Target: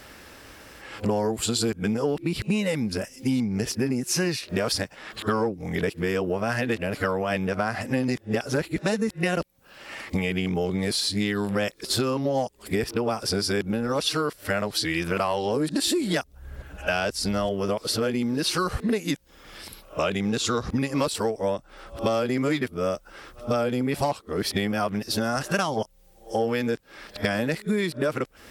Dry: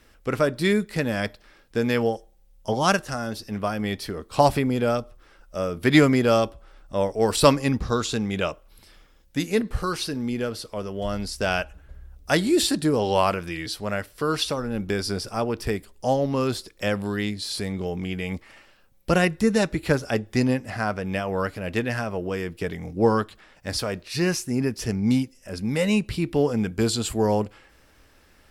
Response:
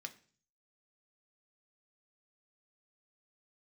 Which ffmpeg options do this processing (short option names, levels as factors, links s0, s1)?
-filter_complex "[0:a]areverse,asplit=2[s0][s1];[s1]acontrast=82,volume=1.33[s2];[s0][s2]amix=inputs=2:normalize=0,highpass=f=120:p=1,acompressor=threshold=0.0794:ratio=10"